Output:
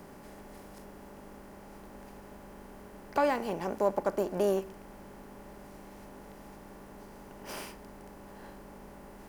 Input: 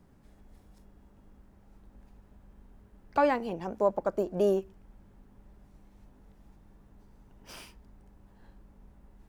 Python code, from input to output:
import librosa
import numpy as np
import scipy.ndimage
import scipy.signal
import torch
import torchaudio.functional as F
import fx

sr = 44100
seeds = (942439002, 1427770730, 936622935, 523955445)

y = fx.bin_compress(x, sr, power=0.6)
y = fx.high_shelf(y, sr, hz=6300.0, db=11.5)
y = y * 10.0 ** (-4.0 / 20.0)